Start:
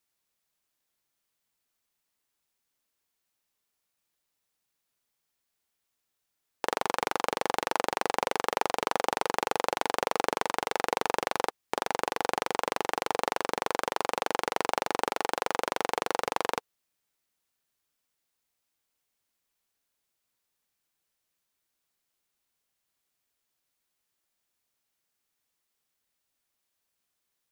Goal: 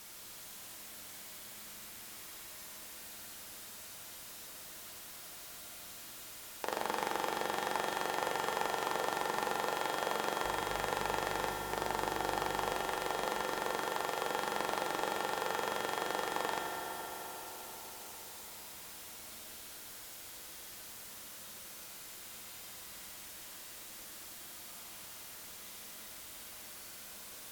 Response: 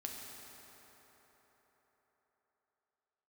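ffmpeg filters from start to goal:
-filter_complex "[0:a]aeval=exprs='val(0)+0.5*0.0168*sgn(val(0))':c=same,asettb=1/sr,asplit=3[a][b][c];[a]atrim=end=10.454[d];[b]atrim=start=10.45:end=12.73,asetpts=PTS-STARTPTS,afade=t=in:d=0.004:c=qsin,afade=t=out:st=2.276:d=0.004:c=qsin,aeval=exprs='val(0)+0.0112*(sin(2*PI*50*n/s)+sin(2*PI*2*50*n/s)/2+sin(2*PI*3*50*n/s)/3+sin(2*PI*4*50*n/s)/4+sin(2*PI*5*50*n/s)/5)':c=same[e];[c]atrim=start=12.726[f];[d][e]acrossfade=d=0.004:c1=hsin:c2=qsin[g];[g][f]acrossfade=d=0.004:c1=qsin:c2=hsin[h];[1:a]atrim=start_sample=2205,asetrate=35280,aresample=44100[i];[h][i]afir=irnorm=-1:irlink=0,volume=-6dB"

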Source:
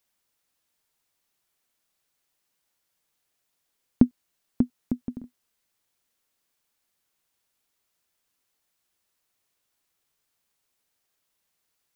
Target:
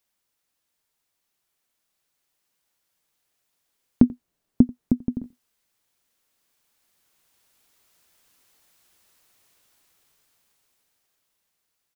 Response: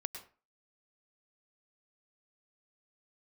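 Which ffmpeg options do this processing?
-filter_complex "[0:a]asettb=1/sr,asplit=3[a][b][c];[a]atrim=end=4.034[d];[b]atrim=start=4.03:end=5.23,asetpts=PTS-STARTPTS,afade=t=in:d=0.004:c=qsin,afade=t=out:st=1.196:d=0.004:c=qsin,tiltshelf=f=830:g=6[e];[c]atrim=start=5.226[f];[d][e]acrossfade=d=0.004:c1=hsin:c2=qsin[g];[g][f]acrossfade=d=0.004:c1=qsin:c2=hsin,dynaudnorm=f=480:g=9:m=15dB,asplit=2[h][i];[i]adelay=87.46,volume=-23dB,highshelf=f=4k:g=-1.97[j];[h][j]amix=inputs=2:normalize=0,volume=-1dB"

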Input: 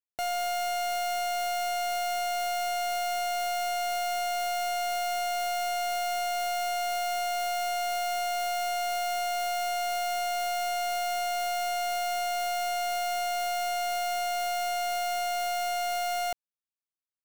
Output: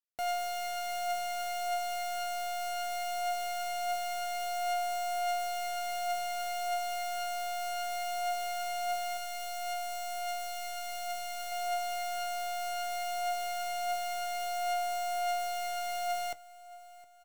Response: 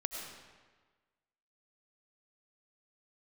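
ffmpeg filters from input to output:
-filter_complex "[0:a]aecho=1:1:713|1426|2139|2852:0.1|0.047|0.0221|0.0104,flanger=delay=4.1:depth=3.8:regen=72:speed=0.2:shape=sinusoidal,asettb=1/sr,asplit=3[a][b][c];[a]atrim=end=9.174[d];[b]atrim=start=9.17:end=11.52,asetpts=PTS-STARTPTS,afade=t=in:d=0.004:c=qsin,afade=t=out:st=2.346:d=0.004:c=qsin,equalizer=f=590:w=0.33:g=-5[e];[c]atrim=start=11.516[f];[d][e]acrossfade=d=0.004:c1=hsin:c2=qsin[g];[g][f]acrossfade=d=0.004:c1=qsin:c2=hsin,volume=-1dB"

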